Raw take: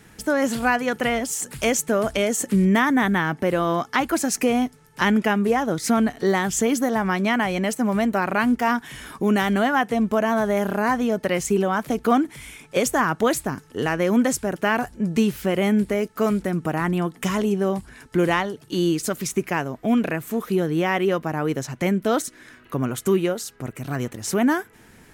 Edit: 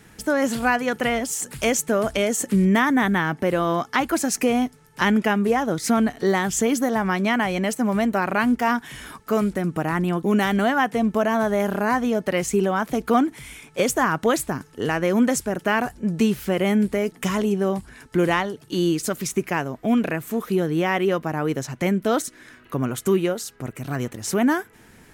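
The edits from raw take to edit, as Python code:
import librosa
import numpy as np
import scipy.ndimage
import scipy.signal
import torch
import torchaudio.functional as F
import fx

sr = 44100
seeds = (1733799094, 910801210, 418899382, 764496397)

y = fx.edit(x, sr, fx.move(start_s=16.09, length_s=1.03, to_s=9.2), tone=tone)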